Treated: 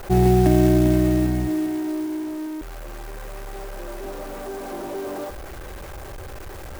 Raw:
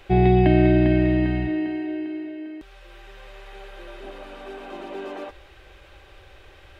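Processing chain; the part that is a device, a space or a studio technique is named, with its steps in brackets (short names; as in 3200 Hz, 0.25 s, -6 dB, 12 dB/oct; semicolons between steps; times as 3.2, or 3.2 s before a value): early CD player with a faulty converter (zero-crossing step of -29.5 dBFS; clock jitter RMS 0.088 ms); high shelf 2400 Hz -9.5 dB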